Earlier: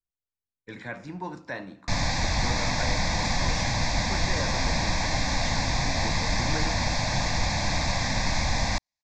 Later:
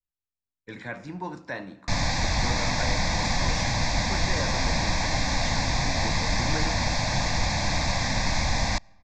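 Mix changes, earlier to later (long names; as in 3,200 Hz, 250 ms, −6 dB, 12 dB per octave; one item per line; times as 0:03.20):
speech: send +7.0 dB
background: send on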